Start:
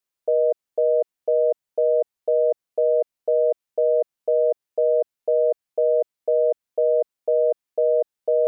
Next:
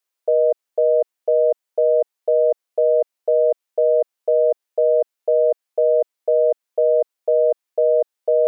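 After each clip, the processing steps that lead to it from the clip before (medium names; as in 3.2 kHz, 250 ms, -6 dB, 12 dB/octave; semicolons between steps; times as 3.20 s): high-pass 380 Hz; trim +4 dB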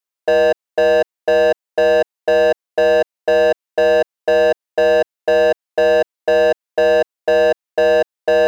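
waveshaping leveller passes 3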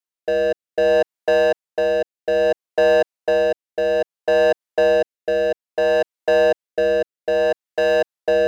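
rotary cabinet horn 0.6 Hz; trim -1.5 dB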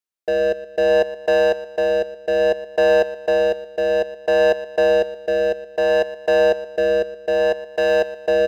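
feedback delay 119 ms, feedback 42%, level -15.5 dB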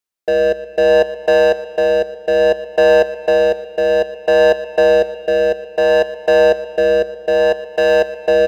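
reverberation RT60 3.9 s, pre-delay 33 ms, DRR 15 dB; trim +4.5 dB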